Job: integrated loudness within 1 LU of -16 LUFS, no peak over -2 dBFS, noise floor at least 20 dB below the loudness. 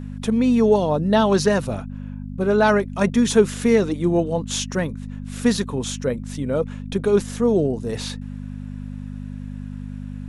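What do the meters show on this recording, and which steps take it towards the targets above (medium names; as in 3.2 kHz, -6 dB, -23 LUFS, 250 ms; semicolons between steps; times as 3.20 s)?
hum 50 Hz; highest harmonic 250 Hz; hum level -29 dBFS; loudness -20.5 LUFS; peak level -3.5 dBFS; loudness target -16.0 LUFS
-> de-hum 50 Hz, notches 5; trim +4.5 dB; peak limiter -2 dBFS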